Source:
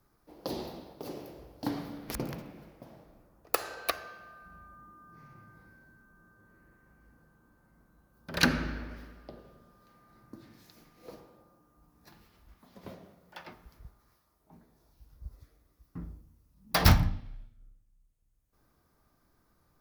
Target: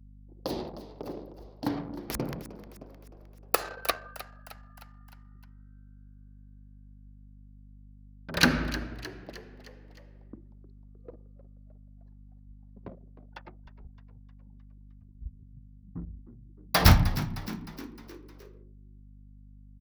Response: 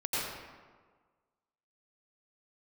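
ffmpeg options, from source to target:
-filter_complex "[0:a]anlmdn=0.158,asplit=6[link_01][link_02][link_03][link_04][link_05][link_06];[link_02]adelay=308,afreqshift=65,volume=-15dB[link_07];[link_03]adelay=616,afreqshift=130,volume=-20.5dB[link_08];[link_04]adelay=924,afreqshift=195,volume=-26dB[link_09];[link_05]adelay=1232,afreqshift=260,volume=-31.5dB[link_10];[link_06]adelay=1540,afreqshift=325,volume=-37.1dB[link_11];[link_01][link_07][link_08][link_09][link_10][link_11]amix=inputs=6:normalize=0,aeval=exprs='val(0)+0.00224*(sin(2*PI*50*n/s)+sin(2*PI*2*50*n/s)/2+sin(2*PI*3*50*n/s)/3+sin(2*PI*4*50*n/s)/4+sin(2*PI*5*50*n/s)/5)':channel_layout=same,volume=3dB"

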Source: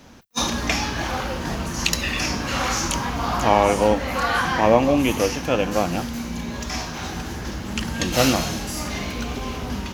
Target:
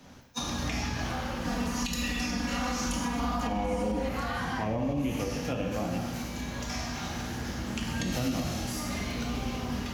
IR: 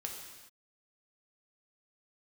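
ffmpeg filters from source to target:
-filter_complex "[1:a]atrim=start_sample=2205,asetrate=66150,aresample=44100[link_01];[0:a][link_01]afir=irnorm=-1:irlink=0,acrossover=split=260[link_02][link_03];[link_03]acompressor=threshold=-34dB:ratio=3[link_04];[link_02][link_04]amix=inputs=2:normalize=0,asettb=1/sr,asplit=3[link_05][link_06][link_07];[link_05]atrim=end=1.474[link_08];[link_06]atrim=start=1.47:end=4.09,asetpts=PTS-STARTPTS,afade=type=in:duration=0.004:curve=qsin,afade=type=out:start_time=2.616:duration=0.004:curve=qsin,aecho=1:1:4.1:0.8,atrim=end_sample=115542[link_09];[link_07]atrim=start=4.086[link_10];[link_08][link_09]acrossfade=duration=0.004:curve1=hsin:curve2=qsin[link_11];[link_11][link_10]acrossfade=duration=0.004:curve1=qsin:curve2=hsin,alimiter=limit=-21dB:level=0:latency=1:release=83"

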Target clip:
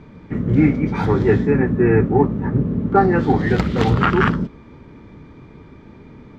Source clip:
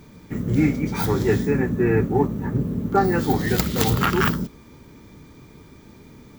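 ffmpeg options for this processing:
ffmpeg -i in.wav -af "lowpass=2400,volume=4.5dB" out.wav

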